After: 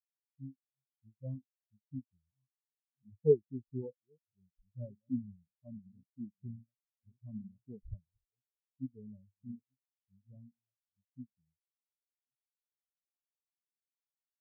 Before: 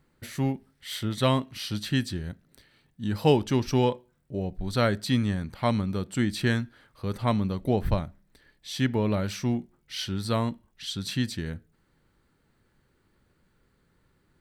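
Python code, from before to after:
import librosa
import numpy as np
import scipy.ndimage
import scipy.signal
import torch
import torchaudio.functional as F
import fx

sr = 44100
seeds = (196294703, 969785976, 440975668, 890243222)

y = fx.reverse_delay(x, sr, ms=619, wet_db=-10.0)
y = fx.env_flanger(y, sr, rest_ms=7.0, full_db=-23.5)
y = fx.spectral_expand(y, sr, expansion=4.0)
y = y * librosa.db_to_amplitude(-4.0)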